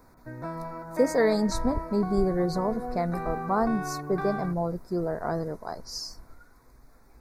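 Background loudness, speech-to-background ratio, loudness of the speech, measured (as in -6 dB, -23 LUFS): -36.0 LUFS, 7.5 dB, -28.5 LUFS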